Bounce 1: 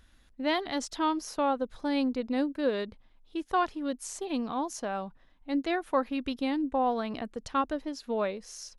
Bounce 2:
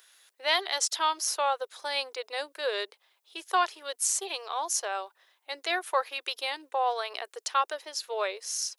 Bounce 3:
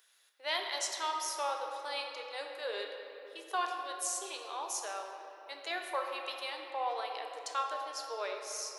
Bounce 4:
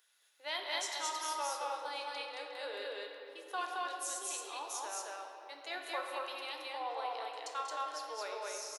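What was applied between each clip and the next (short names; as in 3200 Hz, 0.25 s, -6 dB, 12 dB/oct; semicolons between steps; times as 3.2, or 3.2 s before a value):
elliptic high-pass 380 Hz, stop band 40 dB; tilt +4 dB/oct; gain +2.5 dB
shoebox room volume 180 m³, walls hard, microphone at 0.38 m; gain -9 dB
resonator 290 Hz, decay 0.16 s, harmonics odd, mix 60%; loudspeakers at several distances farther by 65 m -11 dB, 76 m -1 dB; gain +2 dB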